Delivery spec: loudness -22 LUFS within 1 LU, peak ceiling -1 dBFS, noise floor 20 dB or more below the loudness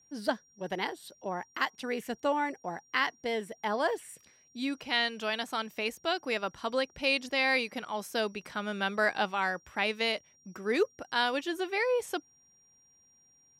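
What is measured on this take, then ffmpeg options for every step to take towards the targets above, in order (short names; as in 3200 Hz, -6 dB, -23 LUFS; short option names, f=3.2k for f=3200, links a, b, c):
steady tone 5700 Hz; tone level -62 dBFS; loudness -31.5 LUFS; peak -13.5 dBFS; loudness target -22.0 LUFS
-> -af "bandreject=f=5.7k:w=30"
-af "volume=9.5dB"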